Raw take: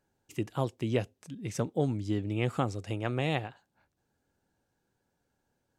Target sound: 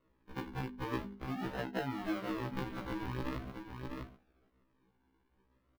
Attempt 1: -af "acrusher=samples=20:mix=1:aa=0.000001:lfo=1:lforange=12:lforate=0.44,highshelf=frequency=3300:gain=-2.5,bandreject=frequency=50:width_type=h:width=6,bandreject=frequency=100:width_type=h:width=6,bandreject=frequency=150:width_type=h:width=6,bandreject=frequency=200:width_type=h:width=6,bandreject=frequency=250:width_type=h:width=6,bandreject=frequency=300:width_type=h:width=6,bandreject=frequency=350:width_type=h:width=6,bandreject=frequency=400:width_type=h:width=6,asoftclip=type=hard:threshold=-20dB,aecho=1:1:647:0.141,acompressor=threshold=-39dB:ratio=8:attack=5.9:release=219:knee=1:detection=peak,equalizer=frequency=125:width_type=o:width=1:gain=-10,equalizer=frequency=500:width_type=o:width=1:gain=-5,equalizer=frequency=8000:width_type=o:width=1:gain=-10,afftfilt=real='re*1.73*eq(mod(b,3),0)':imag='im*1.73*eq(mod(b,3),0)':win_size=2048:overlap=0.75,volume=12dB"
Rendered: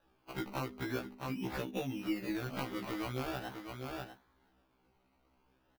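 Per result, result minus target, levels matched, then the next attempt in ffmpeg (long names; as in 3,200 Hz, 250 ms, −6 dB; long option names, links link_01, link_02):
sample-and-hold swept by an LFO: distortion −9 dB; 4,000 Hz band +3.0 dB
-af "acrusher=samples=54:mix=1:aa=0.000001:lfo=1:lforange=32.4:lforate=0.44,highshelf=frequency=3300:gain=-2.5,bandreject=frequency=50:width_type=h:width=6,bandreject=frequency=100:width_type=h:width=6,bandreject=frequency=150:width_type=h:width=6,bandreject=frequency=200:width_type=h:width=6,bandreject=frequency=250:width_type=h:width=6,bandreject=frequency=300:width_type=h:width=6,bandreject=frequency=350:width_type=h:width=6,bandreject=frequency=400:width_type=h:width=6,asoftclip=type=hard:threshold=-20dB,aecho=1:1:647:0.141,acompressor=threshold=-39dB:ratio=8:attack=5.9:release=219:knee=1:detection=peak,equalizer=frequency=125:width_type=o:width=1:gain=-10,equalizer=frequency=500:width_type=o:width=1:gain=-5,equalizer=frequency=8000:width_type=o:width=1:gain=-10,afftfilt=real='re*1.73*eq(mod(b,3),0)':imag='im*1.73*eq(mod(b,3),0)':win_size=2048:overlap=0.75,volume=12dB"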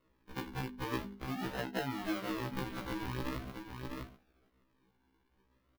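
4,000 Hz band +3.5 dB
-af "acrusher=samples=54:mix=1:aa=0.000001:lfo=1:lforange=32.4:lforate=0.44,highshelf=frequency=3300:gain=-11.5,bandreject=frequency=50:width_type=h:width=6,bandreject=frequency=100:width_type=h:width=6,bandreject=frequency=150:width_type=h:width=6,bandreject=frequency=200:width_type=h:width=6,bandreject=frequency=250:width_type=h:width=6,bandreject=frequency=300:width_type=h:width=6,bandreject=frequency=350:width_type=h:width=6,bandreject=frequency=400:width_type=h:width=6,asoftclip=type=hard:threshold=-20dB,aecho=1:1:647:0.141,acompressor=threshold=-39dB:ratio=8:attack=5.9:release=219:knee=1:detection=peak,equalizer=frequency=125:width_type=o:width=1:gain=-10,equalizer=frequency=500:width_type=o:width=1:gain=-5,equalizer=frequency=8000:width_type=o:width=1:gain=-10,afftfilt=real='re*1.73*eq(mod(b,3),0)':imag='im*1.73*eq(mod(b,3),0)':win_size=2048:overlap=0.75,volume=12dB"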